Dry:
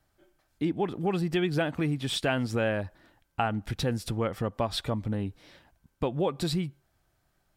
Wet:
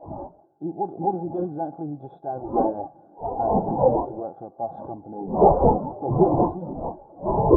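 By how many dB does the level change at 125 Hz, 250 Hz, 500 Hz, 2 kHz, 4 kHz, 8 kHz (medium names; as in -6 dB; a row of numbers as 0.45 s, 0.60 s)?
+2.0 dB, +5.0 dB, +9.0 dB, under -25 dB, under -40 dB, under -35 dB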